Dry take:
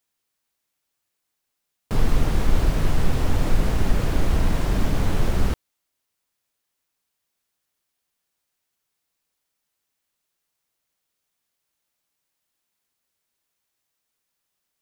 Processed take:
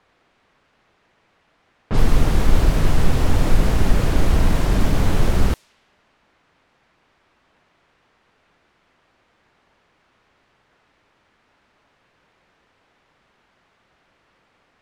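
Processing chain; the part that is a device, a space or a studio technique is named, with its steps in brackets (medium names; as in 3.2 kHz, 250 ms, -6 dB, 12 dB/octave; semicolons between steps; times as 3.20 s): cassette deck with a dynamic noise filter (white noise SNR 34 dB; level-controlled noise filter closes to 1.9 kHz, open at -15.5 dBFS); trim +4 dB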